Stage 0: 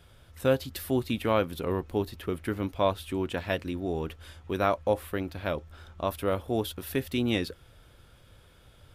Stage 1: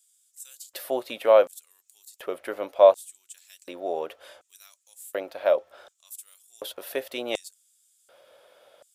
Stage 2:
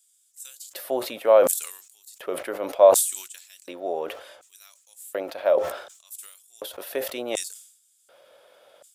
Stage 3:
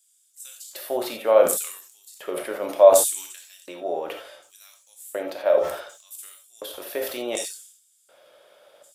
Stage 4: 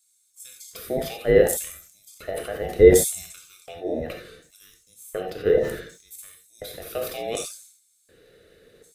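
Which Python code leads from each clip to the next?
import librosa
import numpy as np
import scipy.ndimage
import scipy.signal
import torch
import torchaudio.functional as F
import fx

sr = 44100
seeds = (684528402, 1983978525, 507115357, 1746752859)

y1 = fx.filter_lfo_highpass(x, sr, shape='square', hz=0.68, low_hz=580.0, high_hz=7500.0, q=4.8)
y2 = scipy.signal.sosfilt(scipy.signal.butter(2, 86.0, 'highpass', fs=sr, output='sos'), y1)
y2 = fx.dynamic_eq(y2, sr, hz=3300.0, q=0.72, threshold_db=-42.0, ratio=4.0, max_db=-5)
y2 = fx.sustainer(y2, sr, db_per_s=85.0)
y2 = y2 * 10.0 ** (1.0 / 20.0)
y3 = fx.rev_gated(y2, sr, seeds[0], gate_ms=110, shape='flat', drr_db=3.0)
y3 = y3 * 10.0 ** (-1.0 / 20.0)
y4 = fx.band_invert(y3, sr, width_hz=1000)
y4 = fx.low_shelf(y4, sr, hz=190.0, db=11.5)
y4 = y4 * 10.0 ** (-2.0 / 20.0)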